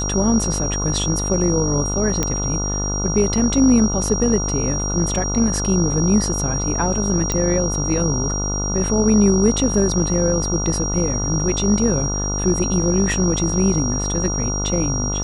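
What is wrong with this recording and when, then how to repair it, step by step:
buzz 50 Hz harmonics 29 -24 dBFS
tone 5700 Hz -24 dBFS
2.23 pop -5 dBFS
7.32 pop -7 dBFS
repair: de-click; de-hum 50 Hz, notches 29; notch 5700 Hz, Q 30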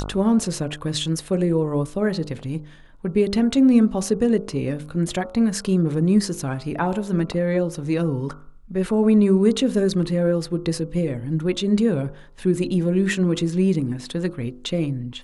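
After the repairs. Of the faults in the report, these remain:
2.23 pop

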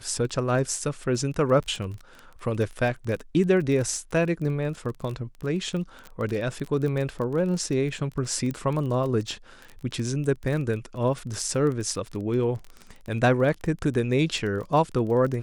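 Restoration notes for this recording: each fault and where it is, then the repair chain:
crackle 22/s -30 dBFS
8.51 pop -20 dBFS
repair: de-click

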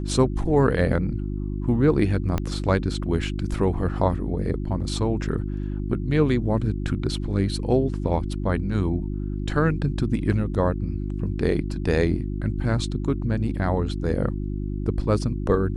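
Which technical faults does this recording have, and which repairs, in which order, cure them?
hum 50 Hz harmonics 7 -28 dBFS
2.38 pop -12 dBFS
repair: de-click; de-hum 50 Hz, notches 7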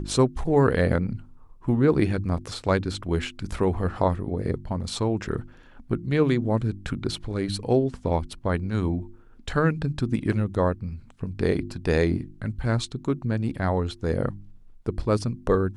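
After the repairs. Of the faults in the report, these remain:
2.38 pop

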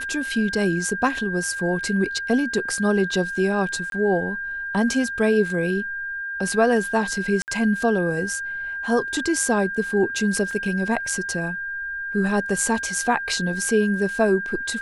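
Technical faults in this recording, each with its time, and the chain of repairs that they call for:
tone 1600 Hz -27 dBFS
3.9–3.92 gap 22 ms
7.42–7.48 gap 59 ms
10.51 gap 2.3 ms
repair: notch 1600 Hz, Q 30; interpolate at 3.9, 22 ms; interpolate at 7.42, 59 ms; interpolate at 10.51, 2.3 ms

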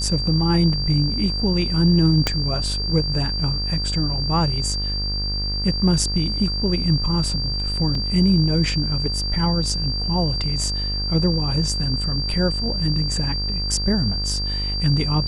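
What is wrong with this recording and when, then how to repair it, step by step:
buzz 50 Hz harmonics 39 -26 dBFS
tone 4700 Hz -25 dBFS
2.27 pop -4 dBFS
7.95 gap 2.4 ms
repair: de-click; de-hum 50 Hz, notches 39; notch 4700 Hz, Q 30; interpolate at 7.95, 2.4 ms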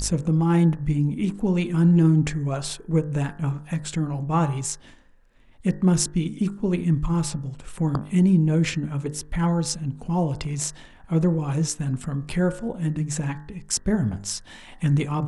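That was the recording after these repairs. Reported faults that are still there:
2.27 pop

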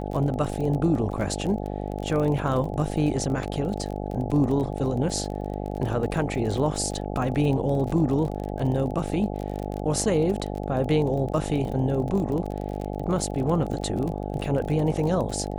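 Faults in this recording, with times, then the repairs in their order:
buzz 50 Hz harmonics 17 -31 dBFS
crackle 32/s -30 dBFS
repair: de-click; de-hum 50 Hz, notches 17

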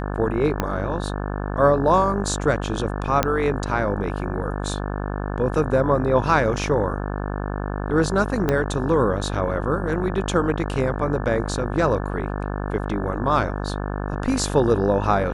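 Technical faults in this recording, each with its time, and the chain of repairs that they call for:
buzz 50 Hz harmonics 35 -27 dBFS
0.6 pop -8 dBFS
3.23 pop -4 dBFS
8.49 pop -8 dBFS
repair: de-click; de-hum 50 Hz, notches 35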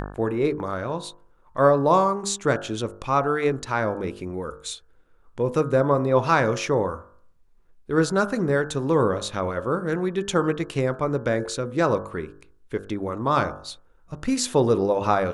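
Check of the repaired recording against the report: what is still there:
0.6 pop
8.49 pop

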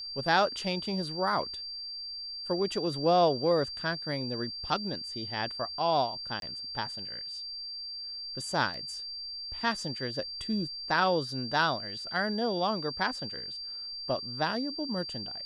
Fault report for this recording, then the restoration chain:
tone 4700 Hz -37 dBFS
6.4–6.42 gap 22 ms
8.74 gap 2.5 ms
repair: notch 4700 Hz, Q 30; interpolate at 6.4, 22 ms; interpolate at 8.74, 2.5 ms

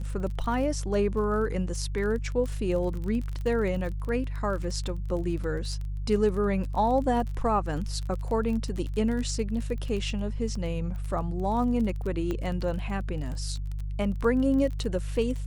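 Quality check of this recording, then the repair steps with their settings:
crackle 25/s -33 dBFS
hum 50 Hz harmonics 3 -32 dBFS
12.31 pop -19 dBFS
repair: de-click; de-hum 50 Hz, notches 3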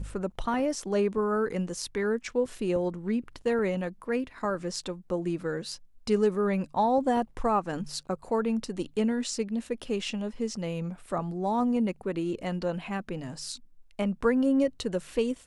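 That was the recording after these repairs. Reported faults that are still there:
12.31 pop

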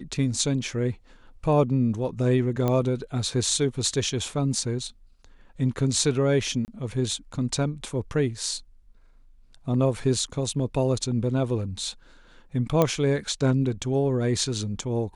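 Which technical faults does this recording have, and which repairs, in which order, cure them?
2.68 pop -13 dBFS
6.65–6.68 gap 29 ms
12.82 pop -8 dBFS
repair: de-click; interpolate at 6.65, 29 ms

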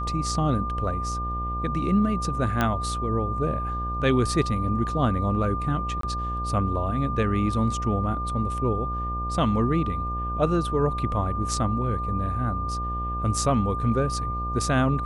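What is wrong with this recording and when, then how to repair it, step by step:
buzz 60 Hz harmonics 14 -31 dBFS
tone 1200 Hz -29 dBFS
2.61 pop -10 dBFS
6.01–6.03 gap 23 ms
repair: de-click; de-hum 60 Hz, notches 14; notch 1200 Hz, Q 30; interpolate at 6.01, 23 ms

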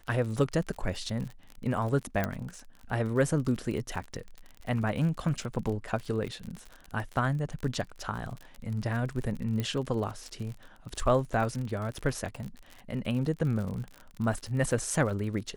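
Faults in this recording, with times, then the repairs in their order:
crackle 49/s -35 dBFS
2.24 pop -15 dBFS
9.6 pop -18 dBFS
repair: de-click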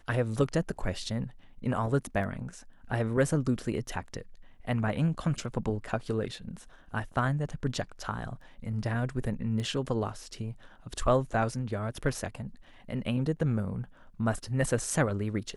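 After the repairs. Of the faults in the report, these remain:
2.24 pop
9.6 pop

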